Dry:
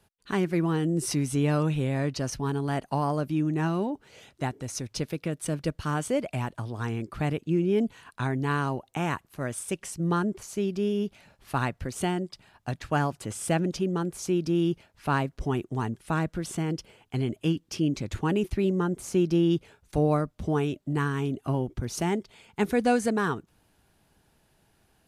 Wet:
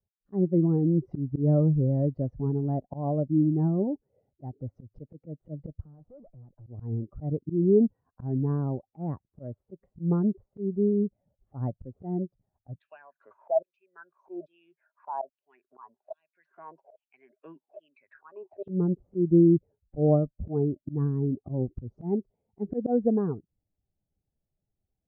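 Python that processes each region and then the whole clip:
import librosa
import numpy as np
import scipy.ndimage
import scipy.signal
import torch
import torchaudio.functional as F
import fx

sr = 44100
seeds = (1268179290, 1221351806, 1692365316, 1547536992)

y = fx.chain(x, sr, fx.tube_stage(drive_db=43.0, bias=0.75),
    fx.band_squash(depth_pct=40), at=(5.82, 6.67))
y = fx.chain(y, sr, fx.ripple_eq(per_octave=1.5, db=7),
    fx.filter_lfo_highpass(shape='saw_down', hz=1.2, low_hz=600.0, high_hz=3600.0, q=6.9),
    fx.band_squash(depth_pct=70), at=(12.79, 18.68))
y = fx.bin_expand(y, sr, power=1.5)
y = scipy.signal.sosfilt(scipy.signal.cheby1(3, 1.0, 640.0, 'lowpass', fs=sr, output='sos'), y)
y = fx.auto_swell(y, sr, attack_ms=137.0)
y = F.gain(torch.from_numpy(y), 6.5).numpy()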